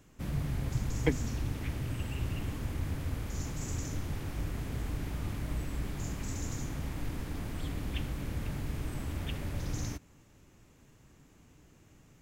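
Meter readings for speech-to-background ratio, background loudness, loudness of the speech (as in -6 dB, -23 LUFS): 2.0 dB, -37.5 LUFS, -35.5 LUFS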